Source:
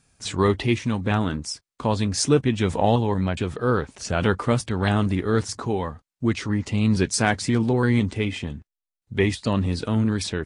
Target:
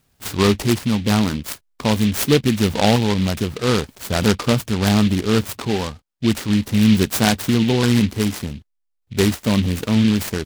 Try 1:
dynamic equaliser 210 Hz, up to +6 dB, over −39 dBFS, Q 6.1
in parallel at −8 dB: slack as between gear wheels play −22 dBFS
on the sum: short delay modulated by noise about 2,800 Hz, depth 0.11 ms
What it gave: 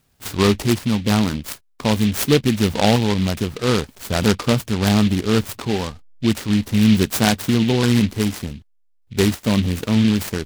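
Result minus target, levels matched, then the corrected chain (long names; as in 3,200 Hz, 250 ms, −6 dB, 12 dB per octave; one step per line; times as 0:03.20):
slack as between gear wheels: distortion +10 dB
dynamic equaliser 210 Hz, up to +6 dB, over −39 dBFS, Q 6.1
in parallel at −8 dB: slack as between gear wheels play −33 dBFS
on the sum: short delay modulated by noise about 2,800 Hz, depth 0.11 ms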